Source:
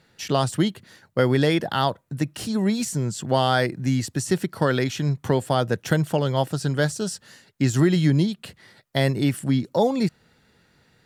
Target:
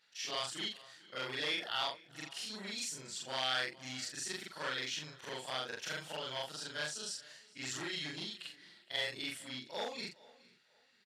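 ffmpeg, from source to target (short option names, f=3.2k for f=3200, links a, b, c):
-filter_complex "[0:a]afftfilt=real='re':imag='-im':win_size=4096:overlap=0.75,asplit=2[a][b];[b]aecho=0:1:416:0.0631[c];[a][c]amix=inputs=2:normalize=0,volume=18.5dB,asoftclip=hard,volume=-18.5dB,bandpass=f=3.6k:t=q:w=0.91:csg=0,asplit=2[d][e];[e]adelay=479,lowpass=f=3.8k:p=1,volume=-24dB,asplit=2[f][g];[g]adelay=479,lowpass=f=3.8k:p=1,volume=0.33[h];[f][h]amix=inputs=2:normalize=0[i];[d][i]amix=inputs=2:normalize=0"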